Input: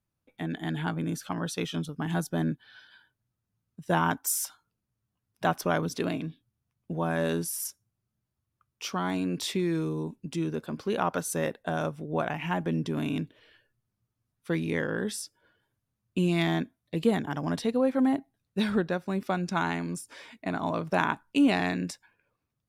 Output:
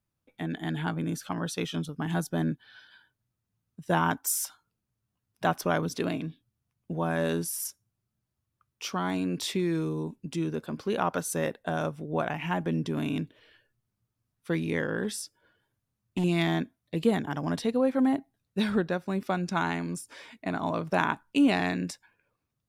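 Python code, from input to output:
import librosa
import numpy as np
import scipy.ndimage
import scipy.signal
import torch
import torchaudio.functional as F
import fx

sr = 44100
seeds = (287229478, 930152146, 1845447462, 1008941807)

y = fx.overload_stage(x, sr, gain_db=23.5, at=(15.03, 16.24))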